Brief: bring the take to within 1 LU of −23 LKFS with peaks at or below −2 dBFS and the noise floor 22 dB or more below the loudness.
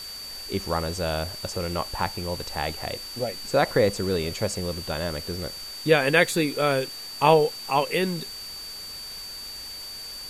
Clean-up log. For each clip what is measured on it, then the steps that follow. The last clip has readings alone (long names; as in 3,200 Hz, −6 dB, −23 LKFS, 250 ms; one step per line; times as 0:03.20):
interfering tone 4,600 Hz; level of the tone −36 dBFS; background noise floor −38 dBFS; target noise floor −48 dBFS; integrated loudness −26.0 LKFS; sample peak −3.5 dBFS; target loudness −23.0 LKFS
→ notch filter 4,600 Hz, Q 30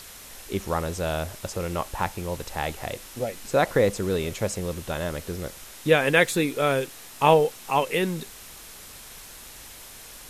interfering tone none found; background noise floor −44 dBFS; target noise floor −48 dBFS
→ broadband denoise 6 dB, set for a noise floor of −44 dBFS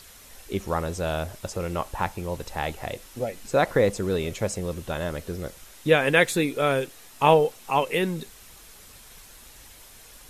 background noise floor −49 dBFS; integrated loudness −25.5 LKFS; sample peak −3.5 dBFS; target loudness −23.0 LKFS
→ level +2.5 dB
brickwall limiter −2 dBFS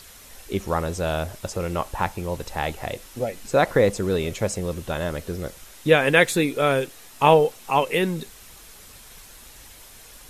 integrated loudness −23.0 LKFS; sample peak −2.0 dBFS; background noise floor −46 dBFS